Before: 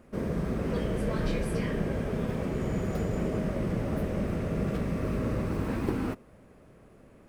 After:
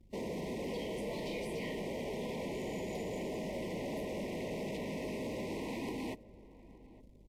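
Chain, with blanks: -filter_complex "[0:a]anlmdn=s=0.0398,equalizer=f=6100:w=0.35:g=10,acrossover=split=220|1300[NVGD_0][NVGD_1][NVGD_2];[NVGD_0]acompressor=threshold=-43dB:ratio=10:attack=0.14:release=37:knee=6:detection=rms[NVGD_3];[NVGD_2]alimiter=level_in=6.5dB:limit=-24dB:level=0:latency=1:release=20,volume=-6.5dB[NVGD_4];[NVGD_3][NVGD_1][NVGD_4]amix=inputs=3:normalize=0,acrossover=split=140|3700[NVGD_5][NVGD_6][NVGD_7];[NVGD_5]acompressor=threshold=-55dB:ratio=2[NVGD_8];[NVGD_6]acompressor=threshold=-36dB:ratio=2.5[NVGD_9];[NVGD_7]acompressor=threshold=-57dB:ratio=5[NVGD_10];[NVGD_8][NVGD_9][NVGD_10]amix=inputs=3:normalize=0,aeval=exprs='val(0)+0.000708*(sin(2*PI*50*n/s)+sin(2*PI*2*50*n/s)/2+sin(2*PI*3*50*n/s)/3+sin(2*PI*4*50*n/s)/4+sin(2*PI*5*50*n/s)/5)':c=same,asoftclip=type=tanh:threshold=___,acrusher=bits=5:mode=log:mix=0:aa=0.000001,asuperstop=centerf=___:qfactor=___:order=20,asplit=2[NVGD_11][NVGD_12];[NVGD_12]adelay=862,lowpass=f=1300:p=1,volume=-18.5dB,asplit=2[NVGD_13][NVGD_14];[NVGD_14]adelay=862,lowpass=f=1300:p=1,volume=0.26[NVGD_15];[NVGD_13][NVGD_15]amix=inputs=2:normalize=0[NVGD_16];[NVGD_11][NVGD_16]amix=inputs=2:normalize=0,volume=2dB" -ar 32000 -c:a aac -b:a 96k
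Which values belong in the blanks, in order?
-36.5dB, 1400, 1.7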